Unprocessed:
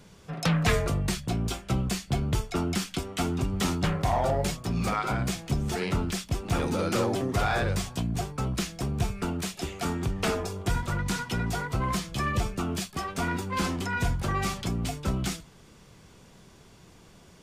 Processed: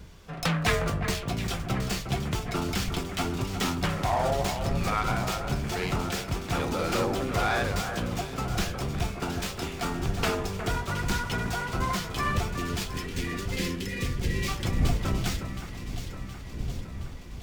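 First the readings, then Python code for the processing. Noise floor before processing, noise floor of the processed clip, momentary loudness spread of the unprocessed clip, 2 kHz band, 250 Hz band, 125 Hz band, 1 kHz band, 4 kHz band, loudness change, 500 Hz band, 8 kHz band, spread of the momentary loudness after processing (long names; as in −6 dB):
−54 dBFS, −39 dBFS, 5 LU, +1.5 dB, −1.5 dB, −1.0 dB, +1.0 dB, +1.5 dB, −0.5 dB, 0.0 dB, −0.5 dB, 10 LU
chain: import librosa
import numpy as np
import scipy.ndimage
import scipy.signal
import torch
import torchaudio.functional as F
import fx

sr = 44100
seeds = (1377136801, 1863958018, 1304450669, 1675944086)

y = fx.dmg_wind(x, sr, seeds[0], corner_hz=83.0, level_db=-32.0)
y = fx.low_shelf(y, sr, hz=490.0, db=-6.0)
y = fx.spec_erase(y, sr, start_s=12.58, length_s=1.9, low_hz=580.0, high_hz=1600.0)
y = fx.echo_alternate(y, sr, ms=360, hz=2200.0, feedback_pct=78, wet_db=-8.0)
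y = fx.running_max(y, sr, window=3)
y = F.gain(torch.from_numpy(y), 2.0).numpy()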